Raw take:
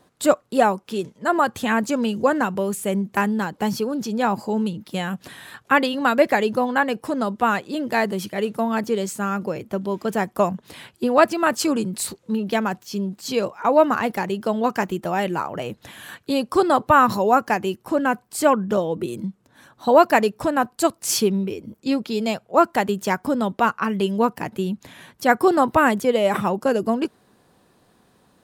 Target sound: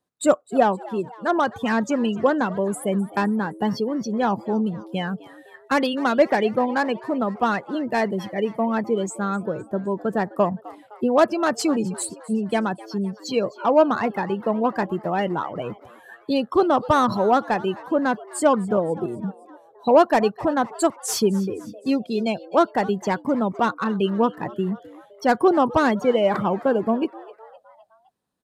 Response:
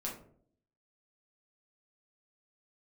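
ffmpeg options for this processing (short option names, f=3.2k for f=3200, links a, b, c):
-filter_complex "[0:a]afftdn=nr=23:nf=-29,highshelf=f=5.3k:g=5.5,acrossover=split=910[a][b];[b]asoftclip=type=tanh:threshold=-22.5dB[c];[a][c]amix=inputs=2:normalize=0,asplit=5[d][e][f][g][h];[e]adelay=257,afreqshift=110,volume=-20dB[i];[f]adelay=514,afreqshift=220,volume=-25.5dB[j];[g]adelay=771,afreqshift=330,volume=-31dB[k];[h]adelay=1028,afreqshift=440,volume=-36.5dB[l];[d][i][j][k][l]amix=inputs=5:normalize=0" -ar 32000 -c:a libvorbis -b:a 128k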